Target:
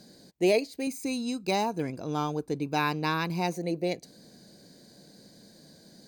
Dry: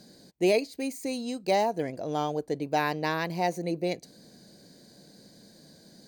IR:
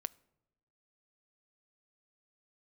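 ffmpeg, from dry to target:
-filter_complex "[0:a]asettb=1/sr,asplit=3[a][b][c];[a]atrim=end=0.874[d];[b]atrim=start=0.87:end=3.54,asetpts=PTS-STARTPTS,afade=t=in:d=0.004:c=qsin,afade=t=out:st=2.666:d=0.004:c=qsin,aecho=1:1:0.8:0.59,atrim=end_sample=117747[e];[c]atrim=start=3.536[f];[d][e]acrossfade=d=0.004:c1=hsin:c2=qsin[g];[g][f]acrossfade=d=0.004:c1=qsin:c2=hsin"

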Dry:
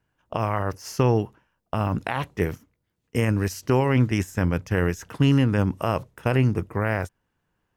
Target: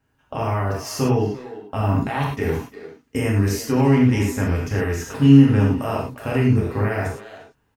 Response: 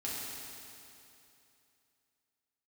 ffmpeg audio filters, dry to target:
-filter_complex "[0:a]alimiter=limit=-17.5dB:level=0:latency=1,asplit=2[a][b];[b]adelay=350,highpass=300,lowpass=3.4k,asoftclip=type=hard:threshold=-26dB,volume=-11dB[c];[a][c]amix=inputs=2:normalize=0[d];[1:a]atrim=start_sample=2205,afade=t=out:st=0.17:d=0.01,atrim=end_sample=7938[e];[d][e]afir=irnorm=-1:irlink=0,volume=6dB"

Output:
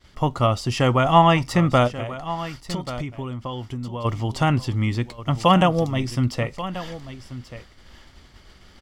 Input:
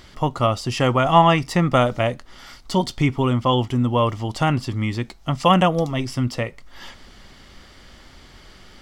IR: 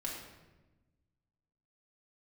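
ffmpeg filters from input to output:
-filter_complex "[0:a]agate=range=-33dB:threshold=-40dB:ratio=3:detection=peak,equalizer=f=70:w=0.83:g=5,asplit=3[a][b][c];[a]afade=t=out:st=1.87:d=0.02[d];[b]acompressor=threshold=-26dB:ratio=12,afade=t=in:st=1.87:d=0.02,afade=t=out:st=4.04:d=0.02[e];[c]afade=t=in:st=4.04:d=0.02[f];[d][e][f]amix=inputs=3:normalize=0,aecho=1:1:1135:0.2,volume=-1dB"

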